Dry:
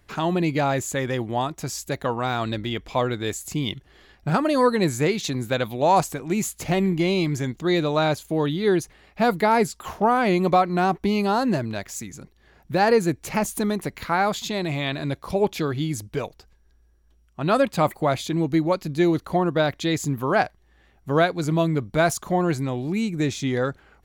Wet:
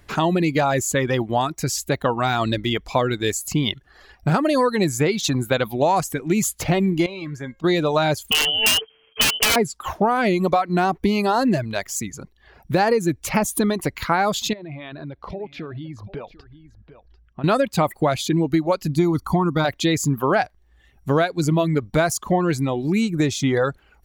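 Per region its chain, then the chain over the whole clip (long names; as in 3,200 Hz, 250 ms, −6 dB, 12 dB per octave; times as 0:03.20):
0:07.06–0:07.64: low-pass filter 3,300 Hz 6 dB per octave + dynamic equaliser 1,800 Hz, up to +4 dB, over −44 dBFS, Q 1.4 + tuned comb filter 540 Hz, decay 0.44 s, mix 70%
0:08.31–0:09.56: samples sorted by size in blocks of 16 samples + voice inversion scrambler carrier 3,200 Hz + wrap-around overflow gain 13 dB
0:14.53–0:17.44: downward compressor 5 to 1, threshold −36 dBFS + high-frequency loss of the air 260 metres + single-tap delay 745 ms −14 dB
0:18.96–0:19.65: parametric band 2,700 Hz −9.5 dB 0.92 octaves + comb filter 0.9 ms, depth 77%
whole clip: reverb reduction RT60 0.76 s; downward compressor, threshold −22 dBFS; level +7 dB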